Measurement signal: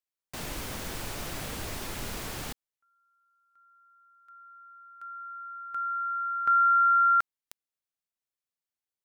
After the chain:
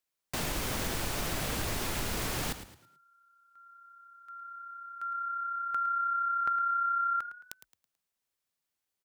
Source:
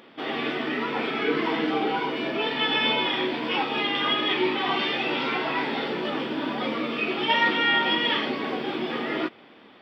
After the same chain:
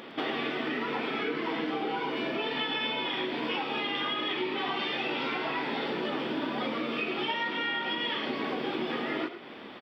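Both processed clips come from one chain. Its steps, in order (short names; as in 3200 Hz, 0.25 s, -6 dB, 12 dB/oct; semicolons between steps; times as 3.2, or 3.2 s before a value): compressor 10:1, threshold -35 dBFS; frequency-shifting echo 0.109 s, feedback 35%, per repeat +33 Hz, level -12 dB; gain +6 dB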